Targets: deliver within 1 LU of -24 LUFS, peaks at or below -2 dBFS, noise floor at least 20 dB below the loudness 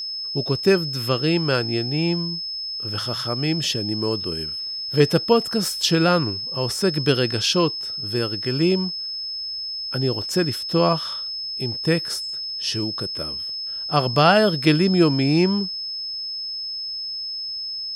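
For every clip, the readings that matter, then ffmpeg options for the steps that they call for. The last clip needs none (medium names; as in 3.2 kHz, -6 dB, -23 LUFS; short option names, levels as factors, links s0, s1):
steady tone 5.2 kHz; tone level -27 dBFS; loudness -22.0 LUFS; peak level -4.0 dBFS; loudness target -24.0 LUFS
-> -af "bandreject=f=5200:w=30"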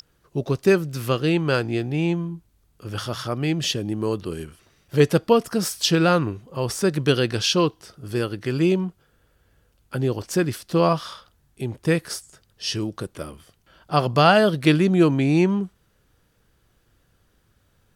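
steady tone not found; loudness -22.0 LUFS; peak level -3.5 dBFS; loudness target -24.0 LUFS
-> -af "volume=0.794"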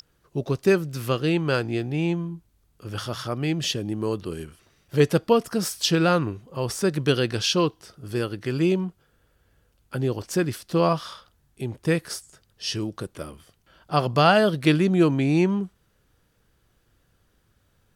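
loudness -24.0 LUFS; peak level -5.5 dBFS; noise floor -66 dBFS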